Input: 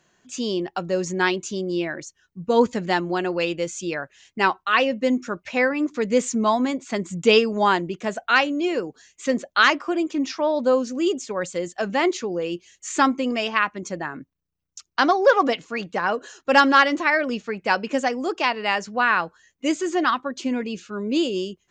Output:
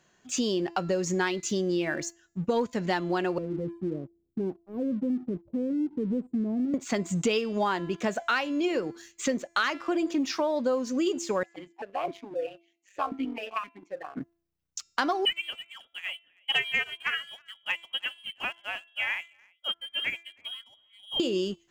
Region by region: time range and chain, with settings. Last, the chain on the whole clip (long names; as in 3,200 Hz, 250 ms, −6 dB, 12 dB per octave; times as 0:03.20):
0:03.38–0:06.74: inverse Chebyshev band-stop filter 1,700–6,400 Hz, stop band 80 dB + downward compressor 2.5 to 1, threshold −30 dBFS
0:11.43–0:14.17: amplitude modulation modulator 200 Hz, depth 80% + formant filter that steps through the vowels 7.7 Hz
0:15.25–0:21.20: single-tap delay 318 ms −12 dB + voice inversion scrambler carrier 3,500 Hz + expander for the loud parts 2.5 to 1, over −29 dBFS
whole clip: hum removal 339 Hz, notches 28; downward compressor 6 to 1, threshold −28 dBFS; leveller curve on the samples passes 1